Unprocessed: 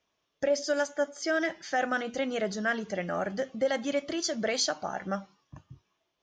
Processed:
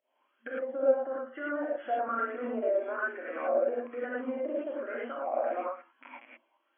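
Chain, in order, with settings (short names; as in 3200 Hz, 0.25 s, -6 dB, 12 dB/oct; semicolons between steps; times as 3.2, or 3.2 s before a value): rattling part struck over -49 dBFS, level -36 dBFS; pump 101 bpm, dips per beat 1, -17 dB, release 0.117 s; treble ducked by the level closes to 1100 Hz, closed at -28.5 dBFS; speed mistake 48 kHz file played as 44.1 kHz; FFT band-pass 230–3400 Hz; limiter -29 dBFS, peak gain reduction 11.5 dB; non-linear reverb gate 0.13 s rising, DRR -5 dB; LFO bell 1.1 Hz 590–1600 Hz +14 dB; gain -5.5 dB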